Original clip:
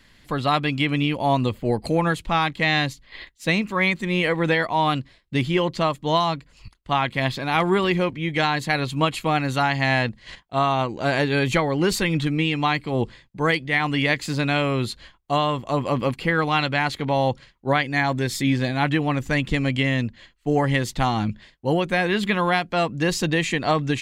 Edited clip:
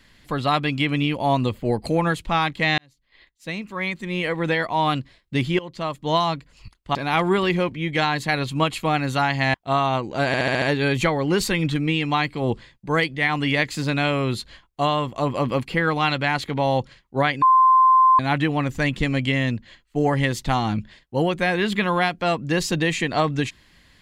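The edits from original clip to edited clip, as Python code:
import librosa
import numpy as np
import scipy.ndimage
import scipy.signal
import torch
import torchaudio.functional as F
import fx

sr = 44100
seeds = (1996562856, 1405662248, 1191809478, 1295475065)

y = fx.edit(x, sr, fx.fade_in_span(start_s=2.78, length_s=2.12),
    fx.fade_in_from(start_s=5.59, length_s=0.56, floor_db=-18.0),
    fx.cut(start_s=6.95, length_s=0.41),
    fx.cut(start_s=9.95, length_s=0.45),
    fx.stutter(start_s=11.13, slice_s=0.07, count=6),
    fx.bleep(start_s=17.93, length_s=0.77, hz=1040.0, db=-11.0), tone=tone)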